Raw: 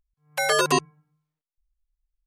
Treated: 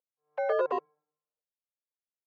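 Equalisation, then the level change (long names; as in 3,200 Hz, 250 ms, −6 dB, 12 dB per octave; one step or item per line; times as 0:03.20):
four-pole ladder band-pass 570 Hz, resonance 60%
high-frequency loss of the air 88 metres
low-shelf EQ 360 Hz −9 dB
+6.5 dB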